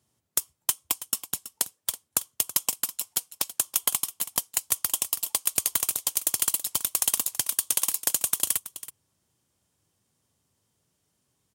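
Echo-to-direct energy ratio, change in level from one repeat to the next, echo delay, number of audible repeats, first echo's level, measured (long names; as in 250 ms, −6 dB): −14.5 dB, repeats not evenly spaced, 327 ms, 1, −14.5 dB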